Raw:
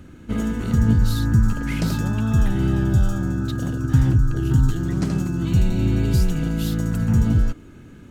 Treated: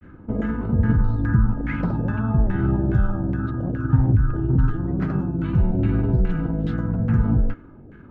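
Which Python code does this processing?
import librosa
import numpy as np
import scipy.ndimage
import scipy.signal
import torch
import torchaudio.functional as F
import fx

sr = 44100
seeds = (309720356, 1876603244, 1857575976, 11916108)

y = fx.granulator(x, sr, seeds[0], grain_ms=100.0, per_s=20.0, spray_ms=14.0, spread_st=0)
y = fx.filter_lfo_lowpass(y, sr, shape='saw_down', hz=2.4, low_hz=550.0, high_hz=2000.0, q=1.9)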